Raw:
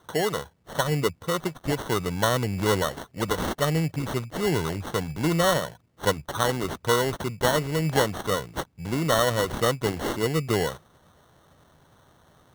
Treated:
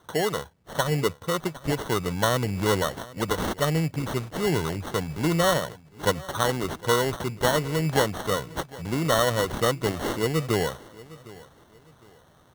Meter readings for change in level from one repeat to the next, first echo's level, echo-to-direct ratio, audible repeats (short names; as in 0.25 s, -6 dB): -10.0 dB, -20.0 dB, -19.5 dB, 2